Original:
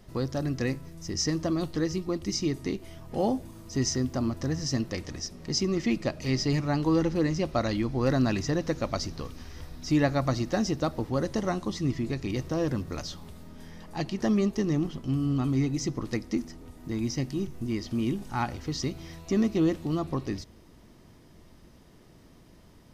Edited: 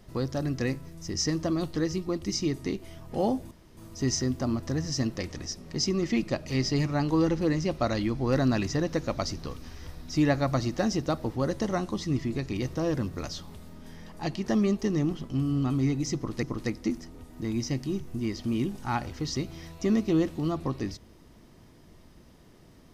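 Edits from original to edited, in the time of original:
0:03.51: splice in room tone 0.26 s
0:15.90–0:16.17: repeat, 2 plays

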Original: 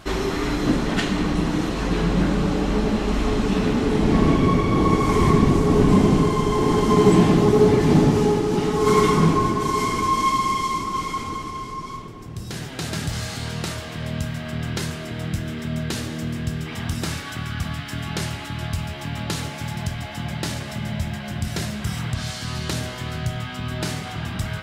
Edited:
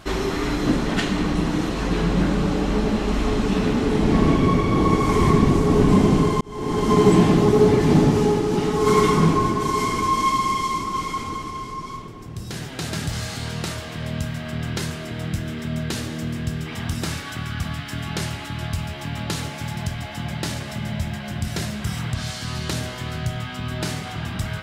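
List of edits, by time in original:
0:06.41–0:06.92: fade in

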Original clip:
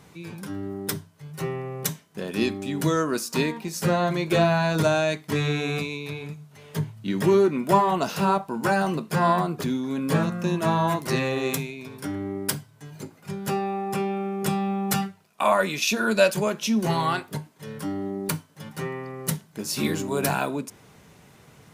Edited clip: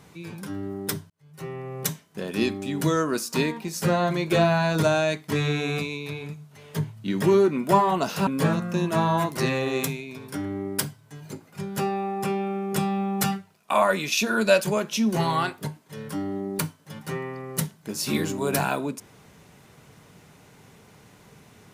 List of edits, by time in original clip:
0:01.10–0:01.83: fade in
0:08.27–0:09.97: remove

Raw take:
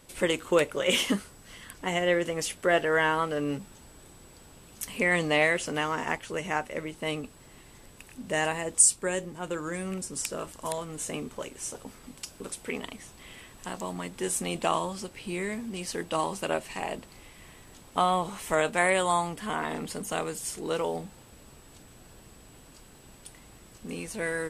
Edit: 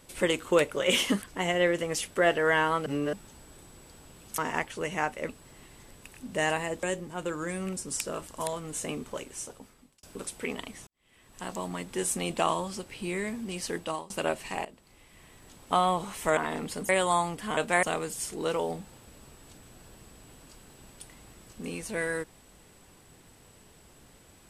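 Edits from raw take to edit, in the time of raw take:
0:01.22–0:01.69: remove
0:03.33–0:03.60: reverse
0:04.85–0:05.91: remove
0:06.82–0:07.24: remove
0:08.78–0:09.08: remove
0:11.46–0:12.28: fade out
0:13.12–0:13.74: fade in quadratic
0:16.02–0:16.35: fade out, to −23.5 dB
0:16.90–0:17.97: fade in, from −15.5 dB
0:18.62–0:18.88: swap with 0:19.56–0:20.08

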